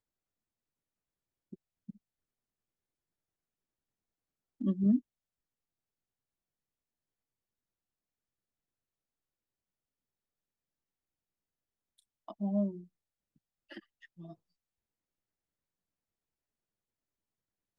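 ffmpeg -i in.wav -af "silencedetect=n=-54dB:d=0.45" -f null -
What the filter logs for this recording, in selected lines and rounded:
silence_start: 0.00
silence_end: 1.52 | silence_duration: 1.52
silence_start: 1.96
silence_end: 4.60 | silence_duration: 2.64
silence_start: 5.01
silence_end: 11.99 | silence_duration: 6.99
silence_start: 12.86
silence_end: 13.70 | silence_duration: 0.84
silence_start: 14.34
silence_end: 17.78 | silence_duration: 3.44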